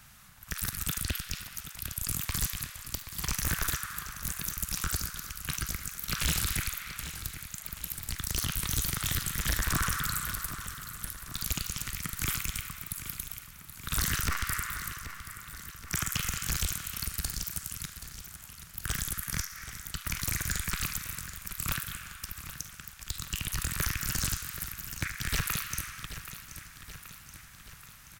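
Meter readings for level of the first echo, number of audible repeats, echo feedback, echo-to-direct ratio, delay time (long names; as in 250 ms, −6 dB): −12.0 dB, 5, 58%, −10.0 dB, 778 ms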